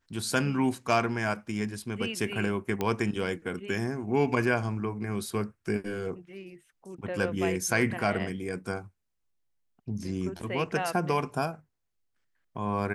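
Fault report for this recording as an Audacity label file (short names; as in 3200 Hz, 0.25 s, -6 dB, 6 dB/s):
2.810000	2.810000	pop -15 dBFS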